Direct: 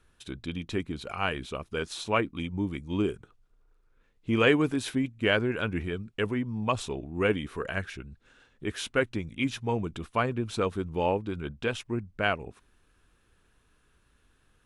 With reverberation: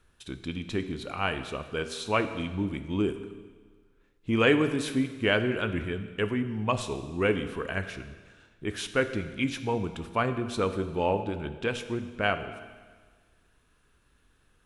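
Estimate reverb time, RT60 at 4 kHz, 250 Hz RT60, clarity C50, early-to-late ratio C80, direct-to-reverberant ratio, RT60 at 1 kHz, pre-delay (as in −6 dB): 1.5 s, 1.4 s, 1.4 s, 10.5 dB, 12.0 dB, 9.0 dB, 1.5 s, 18 ms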